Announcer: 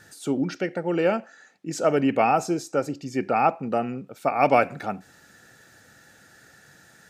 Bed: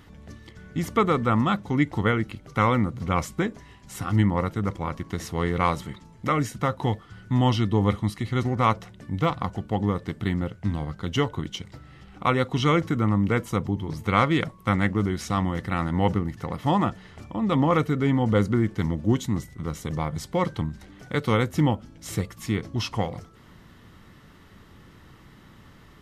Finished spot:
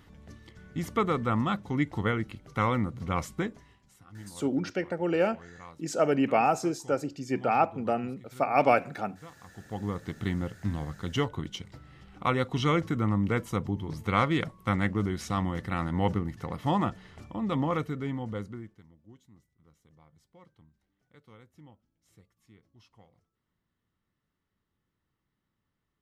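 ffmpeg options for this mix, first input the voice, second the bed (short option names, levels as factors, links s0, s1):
-filter_complex "[0:a]adelay=4150,volume=0.668[s0];[1:a]volume=5.62,afade=t=out:st=3.43:d=0.55:silence=0.105925,afade=t=in:st=9.43:d=0.74:silence=0.0944061,afade=t=out:st=17.16:d=1.67:silence=0.0421697[s1];[s0][s1]amix=inputs=2:normalize=0"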